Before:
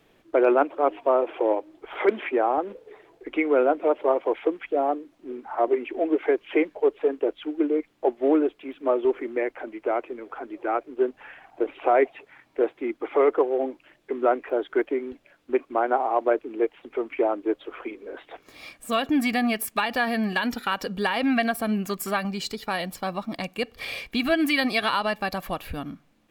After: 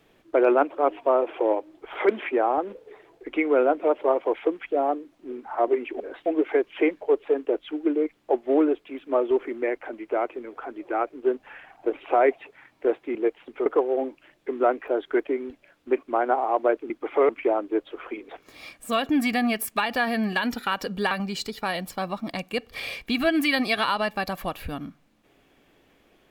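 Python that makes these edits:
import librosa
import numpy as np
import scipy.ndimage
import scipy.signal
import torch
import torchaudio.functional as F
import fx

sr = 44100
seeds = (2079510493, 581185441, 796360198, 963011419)

y = fx.edit(x, sr, fx.swap(start_s=12.89, length_s=0.39, other_s=16.52, other_length_s=0.51),
    fx.move(start_s=18.03, length_s=0.26, to_s=6.0),
    fx.cut(start_s=21.11, length_s=1.05), tone=tone)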